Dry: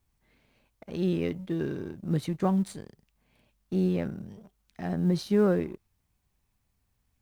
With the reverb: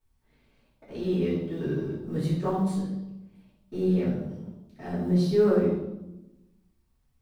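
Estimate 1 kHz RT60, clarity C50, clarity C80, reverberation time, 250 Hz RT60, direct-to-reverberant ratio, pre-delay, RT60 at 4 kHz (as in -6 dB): 0.85 s, 2.0 dB, 5.0 dB, 0.95 s, 1.4 s, -11.0 dB, 3 ms, 0.75 s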